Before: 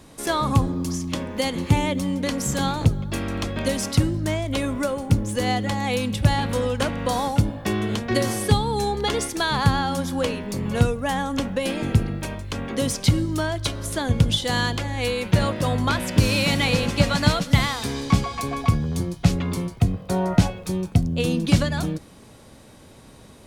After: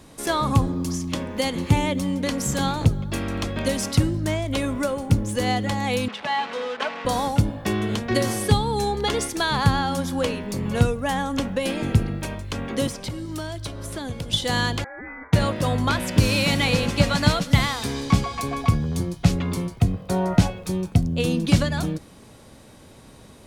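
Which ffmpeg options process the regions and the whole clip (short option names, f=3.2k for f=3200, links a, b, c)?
-filter_complex "[0:a]asettb=1/sr,asplit=3[a][b][c];[a]atrim=end=6.084[d];[b]atrim=start=6.08:end=7.05,asetpts=PTS-STARTPTS,afade=t=in:d=0.004:c=qsin,afade=t=out:st=0.966:d=0.004:c=qsin,aecho=1:1:4.6:0.6,atrim=end_sample=42777,acrusher=bits=4:mix=0:aa=0.5,highpass=600,lowpass=3.2k[e];[c]atrim=start=7.046[f];[d][e]acrossfade=d=0.004:c1=hsin:c2=qsin[g];[g][f]acrossfade=d=0.004:c1=qsin:c2=hsin,asettb=1/sr,asplit=3[h][i][j];[h]atrim=end=12.874[k];[i]atrim=start=12.87:end=14.33,asetpts=PTS-STARTPTS,afade=t=in:d=0.004:c=qsin,afade=t=out:st=1.456:d=0.004:c=qsin,bandreject=f=6.6k:w=26,acrossover=split=380|1100|3100[l][m][n][o];[l]acompressor=threshold=-32dB:ratio=3[p];[m]acompressor=threshold=-38dB:ratio=3[q];[n]acompressor=threshold=-45dB:ratio=3[r];[o]acompressor=threshold=-39dB:ratio=3[s];[p][q][r][s]amix=inputs=4:normalize=0,volume=24dB,asoftclip=hard,volume=-24dB[t];[j]atrim=start=14.326[u];[k][t]acrossfade=d=0.004:c1=hsin:c2=qsin[v];[v][u]acrossfade=d=0.004:c1=qsin:c2=hsin,asettb=1/sr,asplit=3[w][x][y];[w]atrim=end=14.844[z];[x]atrim=start=14.84:end=15.33,asetpts=PTS-STARTPTS,afade=t=in:d=0.004:c=qsin,afade=t=out:st=0.486:d=0.004:c=qsin,highpass=1.1k,aeval=exprs='0.0944*(abs(mod(val(0)/0.0944+3,4)-2)-1)':c=same,lowpass=f=2.1k:t=q:w=0.5098,lowpass=f=2.1k:t=q:w=0.6013,lowpass=f=2.1k:t=q:w=0.9,lowpass=f=2.1k:t=q:w=2.563,afreqshift=-2500[aa];[y]atrim=start=15.326[ab];[z][aa]acrossfade=d=0.004:c1=hsin:c2=qsin[ac];[ac][ab]acrossfade=d=0.004:c1=qsin:c2=hsin"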